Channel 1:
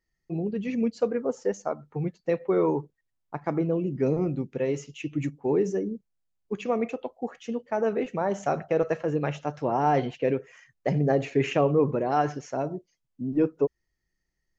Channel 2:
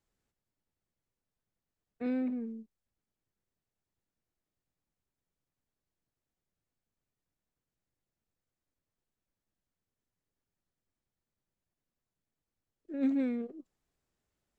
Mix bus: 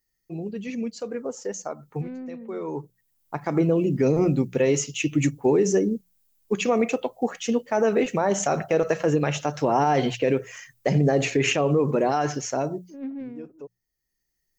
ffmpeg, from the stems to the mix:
-filter_complex "[0:a]aemphasis=mode=production:type=75fm,bandreject=f=60:t=h:w=6,bandreject=f=120:t=h:w=6,bandreject=f=180:t=h:w=6,alimiter=limit=-20dB:level=0:latency=1:release=89,volume=-2dB[a];[1:a]adynamicsmooth=sensitivity=3.5:basefreq=990,volume=-9dB,asplit=2[b][c];[c]apad=whole_len=643318[d];[a][d]sidechaincompress=threshold=-54dB:ratio=6:attack=39:release=955[e];[e][b]amix=inputs=2:normalize=0,dynaudnorm=f=380:g=13:m=10.5dB"

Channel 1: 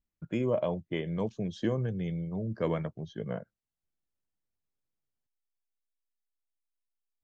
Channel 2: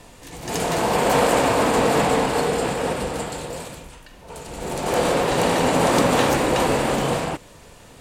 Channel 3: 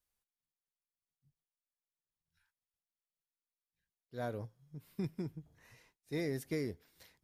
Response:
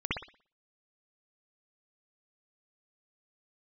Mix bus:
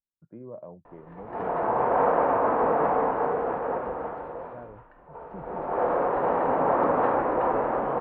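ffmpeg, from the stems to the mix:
-filter_complex "[0:a]volume=-12dB[a];[1:a]equalizer=f=140:w=0.44:g=-13.5,adelay=850,volume=0.5dB[b];[2:a]adelay=350,volume=-4dB[c];[a][b][c]amix=inputs=3:normalize=0,lowpass=f=1.3k:w=0.5412,lowpass=f=1.3k:w=1.3066,lowshelf=f=72:g=-11"

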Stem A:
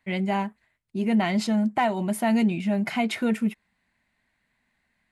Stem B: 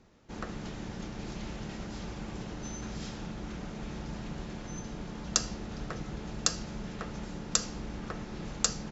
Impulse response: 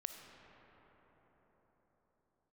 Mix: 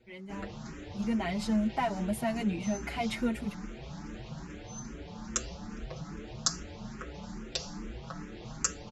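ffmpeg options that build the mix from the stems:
-filter_complex "[0:a]dynaudnorm=f=390:g=5:m=11.5dB,volume=-14.5dB[a];[1:a]asplit=2[b][c];[c]afreqshift=2.4[d];[b][d]amix=inputs=2:normalize=1,volume=3dB[e];[a][e]amix=inputs=2:normalize=0,asplit=2[f][g];[g]adelay=6.1,afreqshift=1.9[h];[f][h]amix=inputs=2:normalize=1"

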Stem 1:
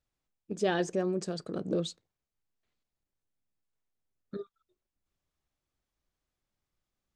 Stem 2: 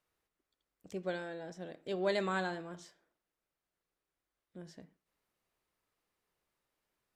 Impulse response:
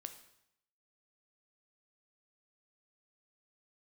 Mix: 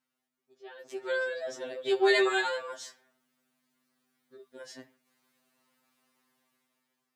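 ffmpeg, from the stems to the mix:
-filter_complex "[0:a]lowpass=f=4.5k:w=0.5412,lowpass=f=4.5k:w=1.3066,volume=-17dB[a];[1:a]aeval=exprs='val(0)+0.0002*(sin(2*PI*50*n/s)+sin(2*PI*2*50*n/s)/2+sin(2*PI*3*50*n/s)/3+sin(2*PI*4*50*n/s)/4+sin(2*PI*5*50*n/s)/5)':c=same,volume=2.5dB[b];[a][b]amix=inputs=2:normalize=0,highpass=f=590:p=1,dynaudnorm=f=310:g=7:m=12dB,afftfilt=real='re*2.45*eq(mod(b,6),0)':imag='im*2.45*eq(mod(b,6),0)':win_size=2048:overlap=0.75"

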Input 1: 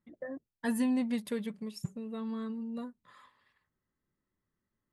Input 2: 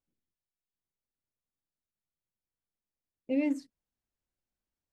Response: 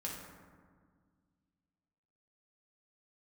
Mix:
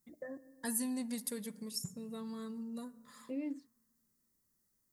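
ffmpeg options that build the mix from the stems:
-filter_complex "[0:a]aexciter=amount=6:drive=6.3:freq=4.5k,volume=-3dB,asplit=2[a][b];[b]volume=-15.5dB[c];[1:a]equalizer=f=340:w=1.5:g=7.5,volume=-10.5dB[d];[2:a]atrim=start_sample=2205[e];[c][e]afir=irnorm=-1:irlink=0[f];[a][d][f]amix=inputs=3:normalize=0,acompressor=threshold=-45dB:ratio=1.5"

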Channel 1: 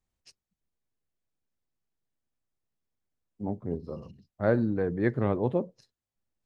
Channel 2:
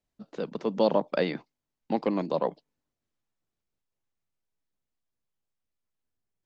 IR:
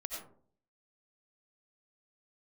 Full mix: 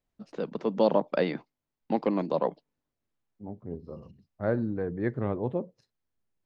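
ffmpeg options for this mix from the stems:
-filter_complex "[0:a]volume=-3dB[a];[1:a]volume=0.5dB,asplit=2[b][c];[c]apad=whole_len=284568[d];[a][d]sidechaincompress=threshold=-36dB:ratio=8:attack=8.6:release=1220[e];[e][b]amix=inputs=2:normalize=0,highshelf=f=4.1k:g=-9"

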